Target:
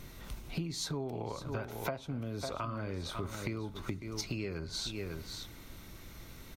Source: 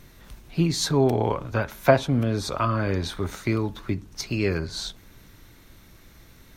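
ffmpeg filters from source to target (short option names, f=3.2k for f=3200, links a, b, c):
-filter_complex "[0:a]bandreject=f=1.7k:w=9.8,asplit=2[a][b];[b]aecho=0:1:549:0.224[c];[a][c]amix=inputs=2:normalize=0,acompressor=threshold=-35dB:ratio=12,volume=1dB"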